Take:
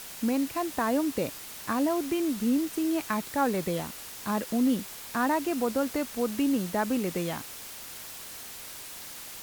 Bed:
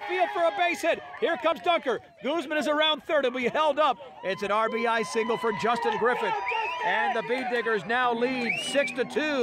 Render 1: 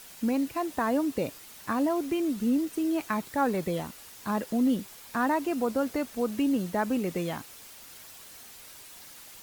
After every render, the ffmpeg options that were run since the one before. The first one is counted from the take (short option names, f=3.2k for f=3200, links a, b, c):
-af "afftdn=nr=7:nf=-43"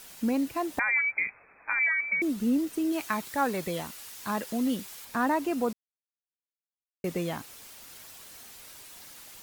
-filter_complex "[0:a]asettb=1/sr,asplit=3[a][b][c];[a]atrim=end=0.794[d];[b]atrim=start=0.79:end=2.22,asetpts=PTS-STARTPTS,afade=t=in:d=0.004:c=qsin,afade=t=out:st=1.426:d=0.004:c=qsin,lowpass=f=2.2k:t=q:w=0.5098,lowpass=f=2.2k:t=q:w=0.6013,lowpass=f=2.2k:t=q:w=0.9,lowpass=f=2.2k:t=q:w=2.563,afreqshift=-2600[e];[c]atrim=start=2.216[f];[d][e]acrossfade=d=0.004:c1=hsin:c2=qsin[g];[g][f]acrossfade=d=0.004:c1=qsin:c2=hsin,asettb=1/sr,asplit=3[h][i][j];[h]atrim=end=2.924[k];[i]atrim=start=2.92:end=5.05,asetpts=PTS-STARTPTS,afade=t=in:d=0.004:c=qsin,afade=t=out:st=2.126:d=0.004:c=qsin,tiltshelf=f=920:g=-4[l];[j]atrim=start=5.046[m];[k][l]acrossfade=d=0.004:c1=hsin:c2=qsin[n];[n][m]acrossfade=d=0.004:c1=qsin:c2=hsin,asplit=3[o][p][q];[o]atrim=end=5.73,asetpts=PTS-STARTPTS,afade=t=out:st=5.726:d=0.004:c=hsin[r];[p]atrim=start=5.73:end=7.04,asetpts=PTS-STARTPTS,volume=0[s];[q]atrim=start=7.04,asetpts=PTS-STARTPTS,afade=t=in:d=0.004:c=hsin[t];[r][s][t]concat=n=3:v=0:a=1"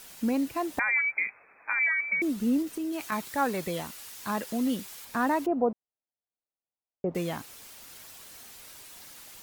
-filter_complex "[0:a]asettb=1/sr,asplit=3[a][b][c];[a]atrim=end=0.944[d];[b]atrim=start=0.94:end=2.09,asetpts=PTS-STARTPTS,afade=t=in:d=0.004:c=qsin,afade=t=out:st=1.146:d=0.004:c=qsin,lowshelf=f=160:g=-12[e];[c]atrim=start=2.086[f];[d][e]acrossfade=d=0.004:c1=hsin:c2=qsin[g];[g][f]acrossfade=d=0.004:c1=qsin:c2=hsin,asettb=1/sr,asplit=3[h][i][j];[h]atrim=end=2.624[k];[i]atrim=start=2.62:end=3.12,asetpts=PTS-STARTPTS,afade=t=in:d=0.004:c=qsin,afade=t=out:st=0.496:d=0.004:c=qsin,acompressor=threshold=-29dB:ratio=6:attack=3.2:release=140:knee=1:detection=peak[l];[j]atrim=start=3.116[m];[k][l]acrossfade=d=0.004:c1=hsin:c2=qsin[n];[n][m]acrossfade=d=0.004:c1=qsin:c2=hsin,asettb=1/sr,asplit=3[o][p][q];[o]atrim=end=5.464[r];[p]atrim=start=5.46:end=7.15,asetpts=PTS-STARTPTS,afade=t=in:d=0.004:c=qsin,afade=t=out:st=1.686:d=0.004:c=qsin,lowpass=f=740:t=q:w=1.9[s];[q]atrim=start=7.146[t];[r][s]acrossfade=d=0.004:c1=hsin:c2=qsin[u];[u][t]acrossfade=d=0.004:c1=qsin:c2=hsin"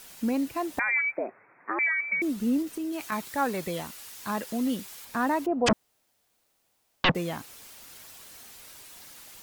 -filter_complex "[0:a]asettb=1/sr,asplit=3[a][b][c];[a]atrim=end=1.174[d];[b]atrim=start=1.17:end=1.79,asetpts=PTS-STARTPTS,afade=t=in:d=0.004:c=qsin,afade=t=out:st=0.616:d=0.004:c=qsin,lowpass=f=2.3k:t=q:w=0.5098,lowpass=f=2.3k:t=q:w=0.6013,lowpass=f=2.3k:t=q:w=0.9,lowpass=f=2.3k:t=q:w=2.563,afreqshift=-2700[e];[c]atrim=start=1.786[f];[d][e]acrossfade=d=0.004:c1=hsin:c2=qsin[g];[g][f]acrossfade=d=0.004:c1=qsin:c2=hsin,asplit=3[h][i][j];[h]afade=t=out:st=5.66:d=0.02[k];[i]aeval=exprs='0.141*sin(PI/2*10*val(0)/0.141)':c=same,afade=t=in:st=5.66:d=0.02,afade=t=out:st=7.1:d=0.02[l];[j]afade=t=in:st=7.1:d=0.02[m];[k][l][m]amix=inputs=3:normalize=0"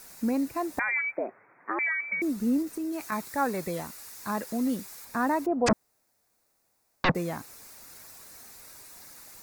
-af "equalizer=f=3.1k:w=3.2:g=-13"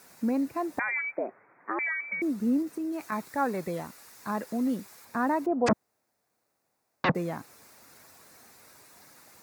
-af "highpass=96,highshelf=f=3.4k:g=-8.5"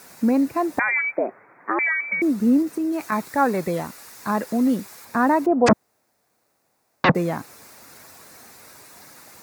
-af "volume=8.5dB"